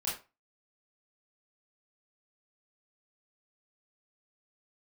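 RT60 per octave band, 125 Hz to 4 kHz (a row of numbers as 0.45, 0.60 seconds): 0.30, 0.25, 0.30, 0.30, 0.25, 0.20 seconds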